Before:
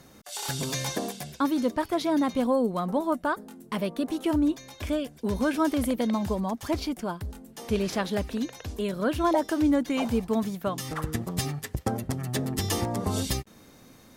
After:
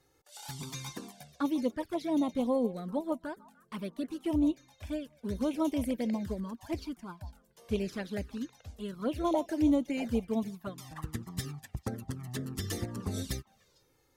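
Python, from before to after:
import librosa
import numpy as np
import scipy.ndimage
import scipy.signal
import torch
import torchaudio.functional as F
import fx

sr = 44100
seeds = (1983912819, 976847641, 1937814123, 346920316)

y = fx.echo_stepped(x, sr, ms=149, hz=700.0, octaves=1.4, feedback_pct=70, wet_db=-12)
y = fx.env_flanger(y, sr, rest_ms=2.5, full_db=-21.0)
y = fx.upward_expand(y, sr, threshold_db=-42.0, expansion=1.5)
y = y * 10.0 ** (-2.0 / 20.0)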